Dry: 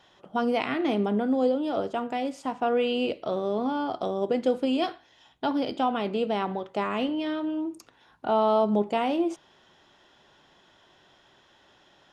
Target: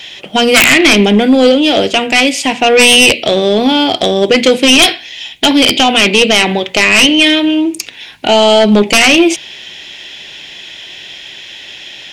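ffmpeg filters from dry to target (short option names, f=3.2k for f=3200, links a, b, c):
-af "highshelf=f=1.7k:t=q:w=3:g=11,bandreject=f=60:t=h:w=6,bandreject=f=120:t=h:w=6,bandreject=f=180:t=h:w=6,bandreject=f=240:t=h:w=6,aeval=exprs='0.944*sin(PI/2*6.31*val(0)/0.944)':c=same,volume=-1dB"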